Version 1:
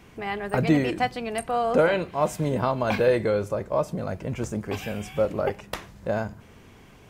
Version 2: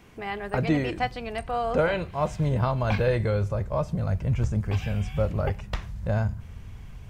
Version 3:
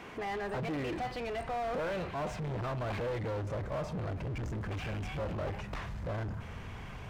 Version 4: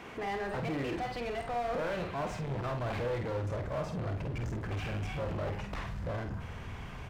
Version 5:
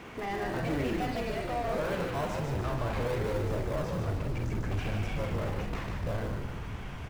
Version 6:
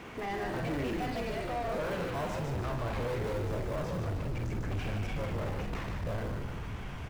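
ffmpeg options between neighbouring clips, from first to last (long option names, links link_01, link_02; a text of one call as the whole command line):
ffmpeg -i in.wav -filter_complex "[0:a]acrossover=split=6500[link_01][link_02];[link_02]acompressor=threshold=-60dB:ratio=4:attack=1:release=60[link_03];[link_01][link_03]amix=inputs=2:normalize=0,asubboost=boost=11:cutoff=99,volume=-2dB" out.wav
ffmpeg -i in.wav -filter_complex "[0:a]asplit=2[link_01][link_02];[link_02]alimiter=limit=-21.5dB:level=0:latency=1,volume=-2dB[link_03];[link_01][link_03]amix=inputs=2:normalize=0,volume=24dB,asoftclip=hard,volume=-24dB,asplit=2[link_04][link_05];[link_05]highpass=frequency=720:poles=1,volume=22dB,asoftclip=type=tanh:threshold=-24dB[link_06];[link_04][link_06]amix=inputs=2:normalize=0,lowpass=frequency=1500:poles=1,volume=-6dB,volume=-7dB" out.wav
ffmpeg -i in.wav -filter_complex "[0:a]asplit=2[link_01][link_02];[link_02]adelay=50,volume=-6.5dB[link_03];[link_01][link_03]amix=inputs=2:normalize=0" out.wav
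ffmpeg -i in.wav -filter_complex "[0:a]asplit=2[link_01][link_02];[link_02]acrusher=samples=38:mix=1:aa=0.000001:lfo=1:lforange=38:lforate=0.79,volume=-10dB[link_03];[link_01][link_03]amix=inputs=2:normalize=0,asplit=8[link_04][link_05][link_06][link_07][link_08][link_09][link_10][link_11];[link_05]adelay=148,afreqshift=-74,volume=-4dB[link_12];[link_06]adelay=296,afreqshift=-148,volume=-9.2dB[link_13];[link_07]adelay=444,afreqshift=-222,volume=-14.4dB[link_14];[link_08]adelay=592,afreqshift=-296,volume=-19.6dB[link_15];[link_09]adelay=740,afreqshift=-370,volume=-24.8dB[link_16];[link_10]adelay=888,afreqshift=-444,volume=-30dB[link_17];[link_11]adelay=1036,afreqshift=-518,volume=-35.2dB[link_18];[link_04][link_12][link_13][link_14][link_15][link_16][link_17][link_18]amix=inputs=8:normalize=0" out.wav
ffmpeg -i in.wav -af "asoftclip=type=tanh:threshold=-27.5dB" out.wav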